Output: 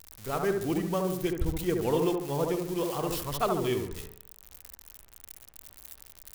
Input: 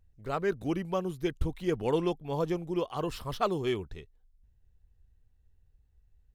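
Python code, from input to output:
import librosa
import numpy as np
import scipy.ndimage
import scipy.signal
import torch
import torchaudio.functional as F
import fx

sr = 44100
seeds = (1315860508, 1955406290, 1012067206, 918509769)

y = x + 0.5 * 10.0 ** (-28.5 / 20.0) * np.diff(np.sign(x), prepend=np.sign(x[:1]))
y = fx.echo_wet_lowpass(y, sr, ms=71, feedback_pct=44, hz=1500.0, wet_db=-3.0)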